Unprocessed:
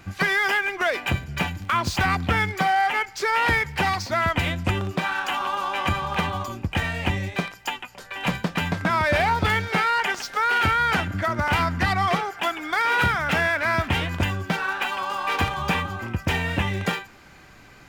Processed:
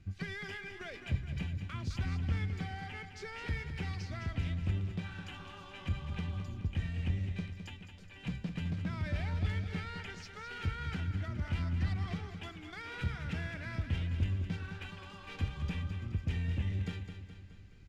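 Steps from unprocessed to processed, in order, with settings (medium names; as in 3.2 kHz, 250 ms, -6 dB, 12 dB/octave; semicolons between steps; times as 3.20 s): amplifier tone stack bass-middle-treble 10-0-1; in parallel at -11 dB: wavefolder -38 dBFS; on the sum: distance through air 66 m; feedback delay 211 ms, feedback 54%, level -9 dB; trim +3 dB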